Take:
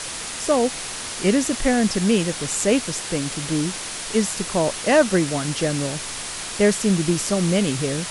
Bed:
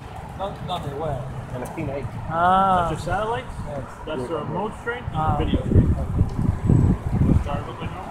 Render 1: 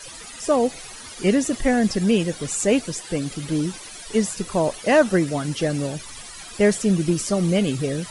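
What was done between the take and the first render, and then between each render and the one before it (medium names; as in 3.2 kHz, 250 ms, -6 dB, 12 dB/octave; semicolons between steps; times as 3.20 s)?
noise reduction 15 dB, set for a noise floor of -31 dBFS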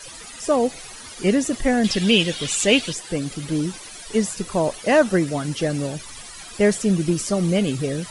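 1.84–2.93 s: peaking EQ 3.2 kHz +14.5 dB 1.1 oct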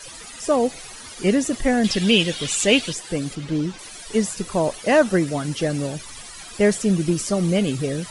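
3.35–3.79 s: distance through air 90 m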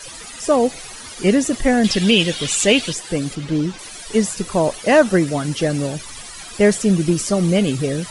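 trim +3.5 dB; peak limiter -3 dBFS, peak gain reduction 3 dB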